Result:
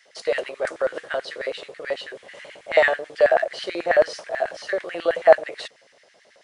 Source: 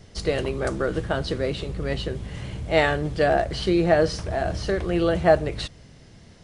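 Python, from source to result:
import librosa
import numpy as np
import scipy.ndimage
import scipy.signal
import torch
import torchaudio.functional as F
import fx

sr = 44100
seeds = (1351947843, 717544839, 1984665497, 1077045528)

y = fx.hum_notches(x, sr, base_hz=50, count=10)
y = fx.filter_lfo_highpass(y, sr, shape='square', hz=9.2, low_hz=560.0, high_hz=1800.0, q=3.5)
y = y * 10.0 ** (-3.5 / 20.0)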